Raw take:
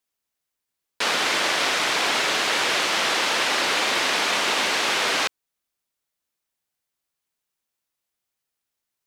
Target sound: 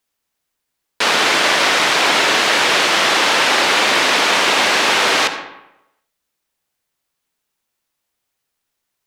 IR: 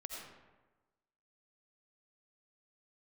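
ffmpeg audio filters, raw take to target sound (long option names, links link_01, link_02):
-filter_complex "[0:a]asplit=2[link_01][link_02];[1:a]atrim=start_sample=2205,asetrate=61740,aresample=44100,highshelf=frequency=5600:gain=-9[link_03];[link_02][link_03]afir=irnorm=-1:irlink=0,volume=3.5dB[link_04];[link_01][link_04]amix=inputs=2:normalize=0,volume=4dB"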